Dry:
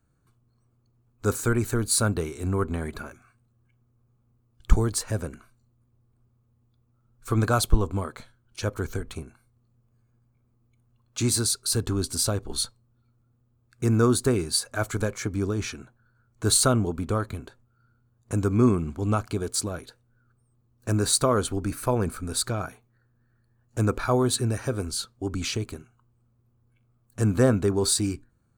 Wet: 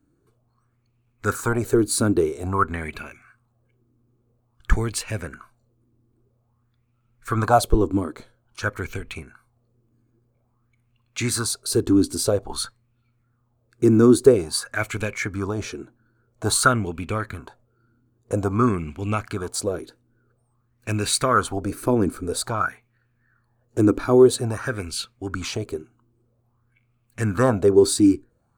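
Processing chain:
auto-filter bell 0.5 Hz 290–2,600 Hz +16 dB
level −1 dB

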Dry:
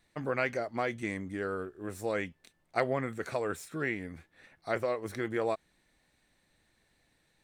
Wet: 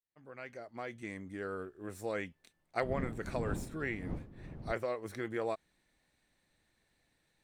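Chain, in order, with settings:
fade in at the beginning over 1.60 s
0:02.81–0:04.71: wind on the microphone 210 Hz −31 dBFS
level −4.5 dB

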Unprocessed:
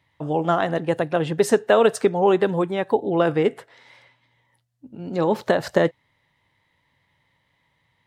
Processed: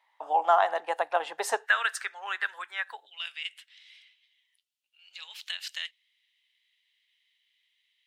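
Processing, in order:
four-pole ladder high-pass 720 Hz, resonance 55%, from 0:01.65 1,400 Hz, from 0:03.05 2,500 Hz
level +5.5 dB

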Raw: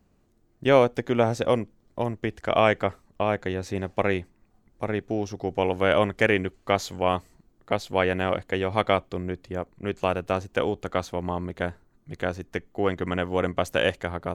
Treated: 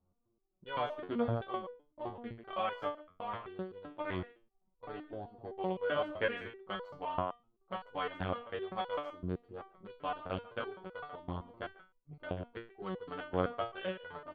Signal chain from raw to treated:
adaptive Wiener filter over 25 samples
Chebyshev low-pass with heavy ripple 4,600 Hz, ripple 9 dB
high-shelf EQ 3,600 Hz −4.5 dB
far-end echo of a speakerphone 140 ms, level −12 dB
step-sequenced resonator 7.8 Hz 91–490 Hz
level +5 dB

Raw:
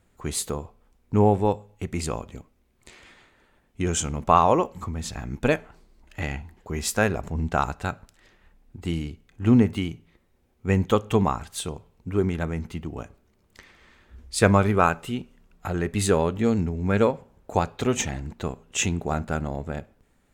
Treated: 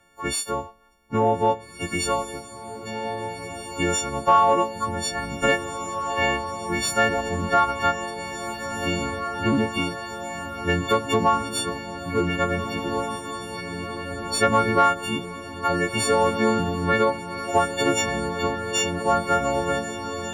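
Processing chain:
every partial snapped to a pitch grid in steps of 4 semitones
parametric band 1,100 Hz +2 dB
downward compressor 3 to 1, threshold −21 dBFS, peak gain reduction 10 dB
in parallel at −11.5 dB: wave folding −16.5 dBFS
on the sum: mid-hump overdrive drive 12 dB, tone 1,400 Hz, clips at −0.5 dBFS
on a send: feedback delay with all-pass diffusion 1,750 ms, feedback 69%, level −9 dB

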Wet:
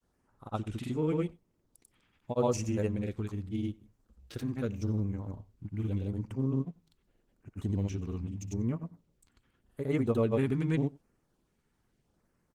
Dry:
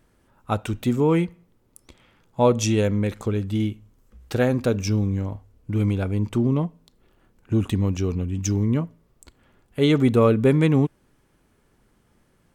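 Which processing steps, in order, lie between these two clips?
auto-filter notch sine 0.83 Hz 530–3,800 Hz
granular cloud 100 ms, pitch spread up and down by 0 semitones
single-tap delay 91 ms −23.5 dB
level −9 dB
Opus 16 kbit/s 48,000 Hz

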